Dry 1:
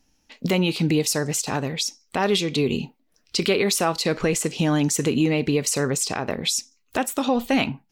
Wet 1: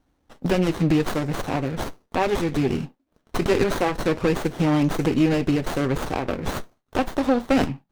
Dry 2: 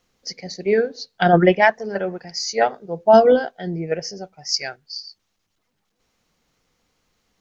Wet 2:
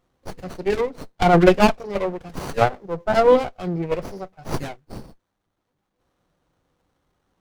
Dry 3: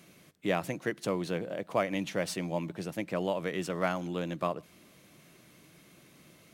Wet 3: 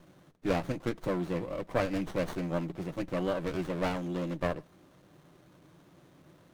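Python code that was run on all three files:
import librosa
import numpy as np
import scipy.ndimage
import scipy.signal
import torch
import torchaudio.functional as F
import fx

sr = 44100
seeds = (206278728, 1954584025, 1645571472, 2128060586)

y = fx.notch_comb(x, sr, f0_hz=220.0)
y = fx.dynamic_eq(y, sr, hz=2200.0, q=3.7, threshold_db=-47.0, ratio=4.0, max_db=6)
y = fx.running_max(y, sr, window=17)
y = y * librosa.db_to_amplitude(2.0)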